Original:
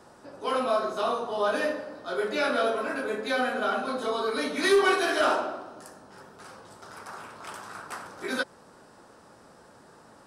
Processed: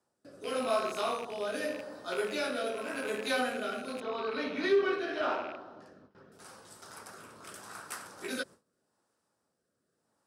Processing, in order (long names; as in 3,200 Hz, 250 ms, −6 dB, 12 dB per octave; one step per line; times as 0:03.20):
loose part that buzzes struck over −44 dBFS, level −28 dBFS
noise gate with hold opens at −40 dBFS
high-pass filter 59 Hz
high-shelf EQ 6,400 Hz +12 dB
rotating-speaker cabinet horn 0.85 Hz
0:04.00–0:06.32: high-frequency loss of the air 260 metres
level −3.5 dB